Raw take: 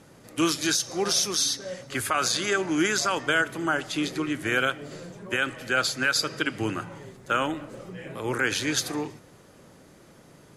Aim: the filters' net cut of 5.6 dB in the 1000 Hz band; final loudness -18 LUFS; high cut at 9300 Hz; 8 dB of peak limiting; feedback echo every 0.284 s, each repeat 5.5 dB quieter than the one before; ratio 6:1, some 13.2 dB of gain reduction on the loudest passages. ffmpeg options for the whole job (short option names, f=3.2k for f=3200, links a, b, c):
-af "lowpass=9.3k,equalizer=f=1k:t=o:g=-8.5,acompressor=threshold=-35dB:ratio=6,alimiter=level_in=5dB:limit=-24dB:level=0:latency=1,volume=-5dB,aecho=1:1:284|568|852|1136|1420|1704|1988:0.531|0.281|0.149|0.079|0.0419|0.0222|0.0118,volume=20.5dB"